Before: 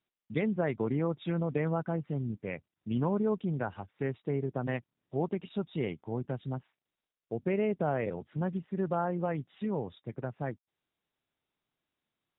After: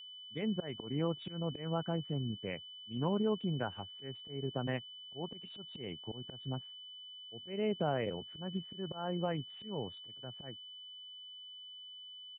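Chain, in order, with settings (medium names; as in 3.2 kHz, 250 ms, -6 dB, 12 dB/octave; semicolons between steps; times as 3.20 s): resampled via 8 kHz; slow attack 200 ms; whistle 3 kHz -45 dBFS; trim -3 dB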